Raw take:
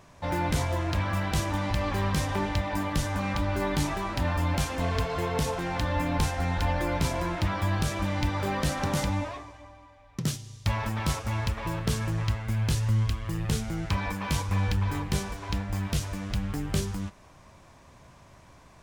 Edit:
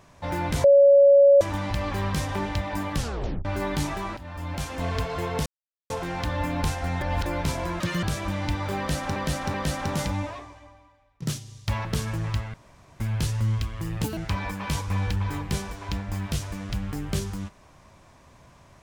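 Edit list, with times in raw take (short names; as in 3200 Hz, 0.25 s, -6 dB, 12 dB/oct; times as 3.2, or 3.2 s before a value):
0.64–1.41 bleep 561 Hz -11 dBFS
2.96 tape stop 0.49 s
4.17–4.89 fade in, from -17.5 dB
5.46 insert silence 0.44 s
6.57–6.82 reverse
7.36–7.77 speed 179%
8.52–8.9 loop, 3 plays
9.54–10.2 fade out linear, to -15.5 dB
10.83–11.79 cut
12.48 insert room tone 0.46 s
13.52–13.78 speed 198%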